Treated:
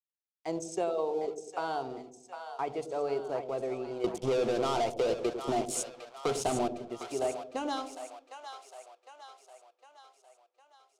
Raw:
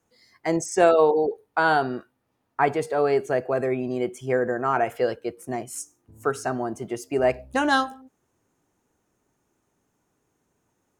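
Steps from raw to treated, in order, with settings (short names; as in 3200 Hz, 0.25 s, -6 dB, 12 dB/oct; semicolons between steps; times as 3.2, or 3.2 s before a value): crossover distortion -41 dBFS; low shelf 250 Hz -7.5 dB; 4.04–6.68 sample leveller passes 5; compressor, threshold -20 dBFS, peak gain reduction 7 dB; LPF 8300 Hz 12 dB/oct; bell 1700 Hz -14 dB 0.67 oct; notches 50/100/150/200/250 Hz; split-band echo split 620 Hz, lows 98 ms, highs 0.757 s, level -8.5 dB; gain -6.5 dB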